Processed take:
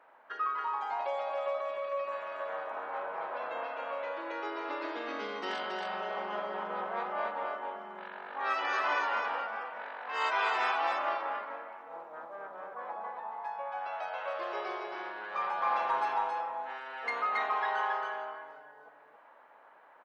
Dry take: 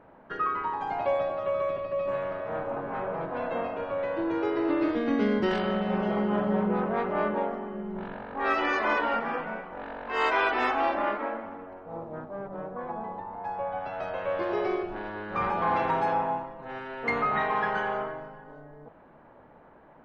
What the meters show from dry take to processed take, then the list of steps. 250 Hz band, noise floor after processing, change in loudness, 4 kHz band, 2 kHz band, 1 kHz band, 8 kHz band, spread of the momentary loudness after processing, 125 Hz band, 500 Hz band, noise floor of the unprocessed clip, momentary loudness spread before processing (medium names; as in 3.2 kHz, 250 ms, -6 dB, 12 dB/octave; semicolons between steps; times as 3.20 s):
-19.5 dB, -58 dBFS, -5.5 dB, -1.5 dB, -3.5 dB, -3.0 dB, no reading, 13 LU, under -25 dB, -8.5 dB, -54 dBFS, 13 LU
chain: high-pass 920 Hz 12 dB/octave; dynamic bell 2 kHz, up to -6 dB, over -43 dBFS, Q 1; on a send: delay 275 ms -3.5 dB